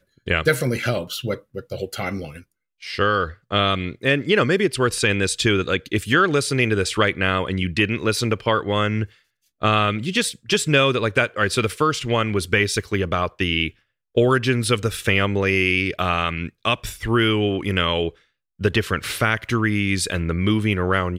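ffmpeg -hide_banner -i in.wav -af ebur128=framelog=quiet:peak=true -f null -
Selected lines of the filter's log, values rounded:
Integrated loudness:
  I:         -20.8 LUFS
  Threshold: -31.1 LUFS
Loudness range:
  LRA:         2.7 LU
  Threshold: -41.0 LUFS
  LRA low:   -22.3 LUFS
  LRA high:  -19.6 LUFS
True peak:
  Peak:       -5.4 dBFS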